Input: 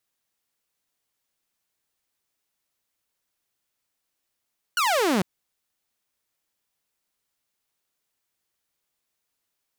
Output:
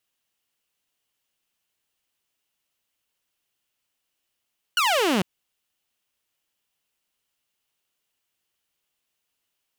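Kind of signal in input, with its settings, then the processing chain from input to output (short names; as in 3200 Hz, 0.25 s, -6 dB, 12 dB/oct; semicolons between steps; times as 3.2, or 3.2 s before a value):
laser zap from 1500 Hz, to 170 Hz, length 0.45 s saw, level -17 dB
bell 2900 Hz +8 dB 0.36 oct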